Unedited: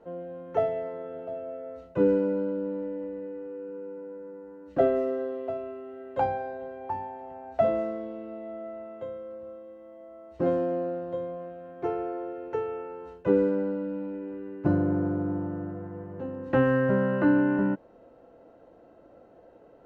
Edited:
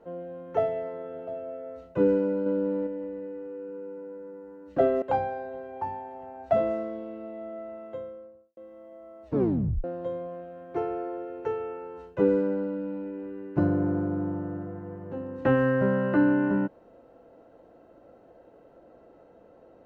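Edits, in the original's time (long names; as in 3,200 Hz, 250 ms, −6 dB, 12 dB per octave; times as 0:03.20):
0:02.46–0:02.87: clip gain +4 dB
0:05.02–0:06.10: remove
0:09.01–0:09.65: fade out and dull
0:10.34: tape stop 0.58 s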